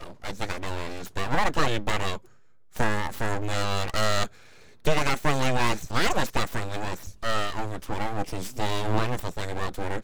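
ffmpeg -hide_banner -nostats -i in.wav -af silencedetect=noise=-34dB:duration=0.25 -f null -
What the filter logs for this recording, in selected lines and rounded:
silence_start: 2.17
silence_end: 2.76 | silence_duration: 0.59
silence_start: 4.27
silence_end: 4.85 | silence_duration: 0.58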